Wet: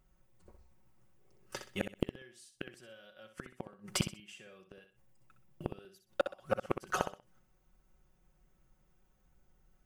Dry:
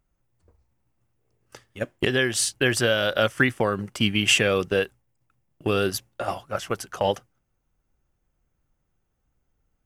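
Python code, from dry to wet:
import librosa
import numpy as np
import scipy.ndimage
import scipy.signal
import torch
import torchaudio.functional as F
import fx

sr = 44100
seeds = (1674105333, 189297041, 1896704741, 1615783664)

p1 = x + 0.65 * np.pad(x, (int(5.4 * sr / 1000.0), 0))[:len(x)]
p2 = fx.gate_flip(p1, sr, shuts_db=-18.0, range_db=-37)
p3 = p2 + fx.echo_feedback(p2, sr, ms=63, feedback_pct=28, wet_db=-9.0, dry=0)
y = p3 * 10.0 ** (1.5 / 20.0)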